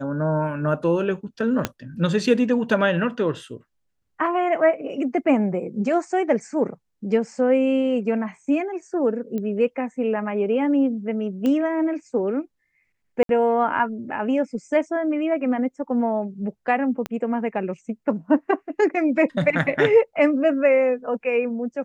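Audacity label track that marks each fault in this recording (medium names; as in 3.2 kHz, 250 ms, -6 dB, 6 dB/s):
1.650000	1.650000	pop -7 dBFS
9.380000	9.380000	pop -18 dBFS
11.460000	11.460000	pop -14 dBFS
13.230000	13.290000	dropout 62 ms
17.060000	17.060000	pop -14 dBFS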